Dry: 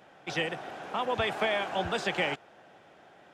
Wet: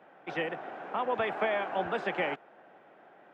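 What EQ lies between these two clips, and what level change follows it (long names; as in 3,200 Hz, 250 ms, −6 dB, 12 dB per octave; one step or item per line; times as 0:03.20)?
three-way crossover with the lows and the highs turned down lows −18 dB, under 170 Hz, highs −21 dB, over 2,500 Hz
0.0 dB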